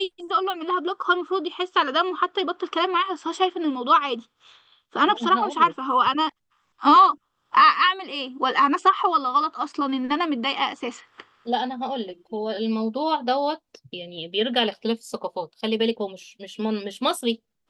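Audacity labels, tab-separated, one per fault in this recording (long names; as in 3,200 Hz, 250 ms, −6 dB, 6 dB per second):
0.500000	0.500000	click −15 dBFS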